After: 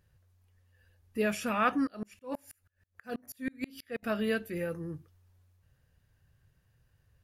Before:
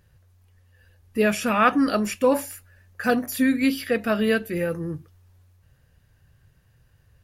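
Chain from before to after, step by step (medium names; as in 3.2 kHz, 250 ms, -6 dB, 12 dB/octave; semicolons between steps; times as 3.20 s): 1.87–4.03 s: sawtooth tremolo in dB swelling 6.2 Hz, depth 34 dB; trim -9 dB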